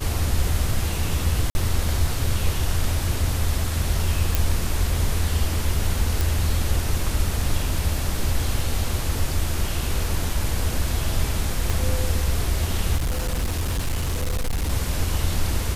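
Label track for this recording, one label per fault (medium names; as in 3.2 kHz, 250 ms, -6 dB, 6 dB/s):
1.500000	1.550000	dropout 50 ms
4.350000	4.350000	pop
6.210000	6.210000	pop
11.700000	11.700000	pop
12.960000	14.710000	clipped -20 dBFS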